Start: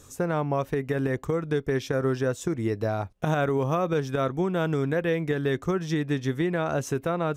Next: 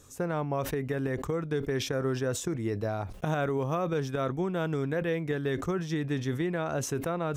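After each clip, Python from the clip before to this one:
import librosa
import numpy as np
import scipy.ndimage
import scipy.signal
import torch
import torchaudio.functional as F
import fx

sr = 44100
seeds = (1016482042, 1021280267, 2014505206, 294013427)

y = fx.sustainer(x, sr, db_per_s=82.0)
y = y * 10.0 ** (-4.5 / 20.0)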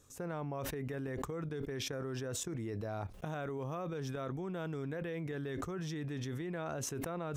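y = fx.level_steps(x, sr, step_db=13)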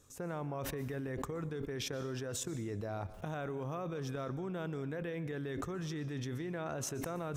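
y = fx.rev_plate(x, sr, seeds[0], rt60_s=0.87, hf_ratio=0.8, predelay_ms=110, drr_db=15.5)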